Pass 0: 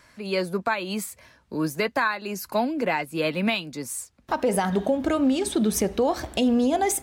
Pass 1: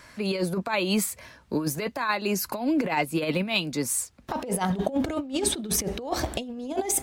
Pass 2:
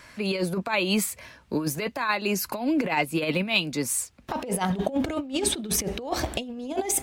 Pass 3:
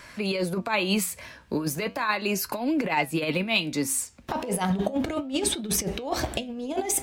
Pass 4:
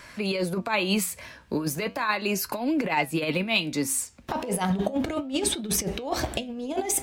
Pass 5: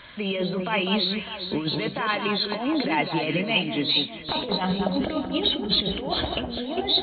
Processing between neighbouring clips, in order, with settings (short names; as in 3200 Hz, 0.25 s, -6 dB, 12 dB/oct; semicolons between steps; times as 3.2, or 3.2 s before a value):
dynamic EQ 1600 Hz, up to -5 dB, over -40 dBFS, Q 2.4; negative-ratio compressor -27 dBFS, ratio -0.5; gain +1.5 dB
bell 2600 Hz +3.5 dB 0.77 oct
in parallel at -2 dB: compressor, threshold -32 dBFS, peak gain reduction 13.5 dB; on the sum: flange 0.35 Hz, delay 4.9 ms, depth 8.4 ms, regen +81%; gain +2 dB
nothing audible
nonlinear frequency compression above 2900 Hz 4:1; echo with dull and thin repeats by turns 0.201 s, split 1600 Hz, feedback 66%, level -5 dB